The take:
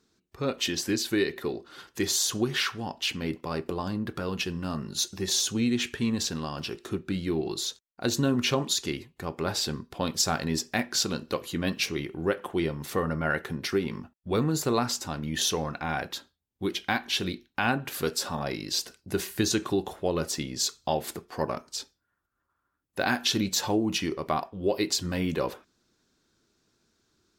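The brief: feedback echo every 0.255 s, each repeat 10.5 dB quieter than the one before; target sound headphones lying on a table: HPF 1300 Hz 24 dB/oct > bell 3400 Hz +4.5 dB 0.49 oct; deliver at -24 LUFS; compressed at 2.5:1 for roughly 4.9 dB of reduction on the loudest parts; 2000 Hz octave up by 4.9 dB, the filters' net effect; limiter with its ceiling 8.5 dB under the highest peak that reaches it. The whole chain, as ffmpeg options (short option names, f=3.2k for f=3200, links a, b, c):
-af "equalizer=f=2k:t=o:g=6.5,acompressor=threshold=-27dB:ratio=2.5,alimiter=limit=-19.5dB:level=0:latency=1,highpass=f=1.3k:w=0.5412,highpass=f=1.3k:w=1.3066,equalizer=f=3.4k:t=o:w=0.49:g=4.5,aecho=1:1:255|510|765:0.299|0.0896|0.0269,volume=9dB"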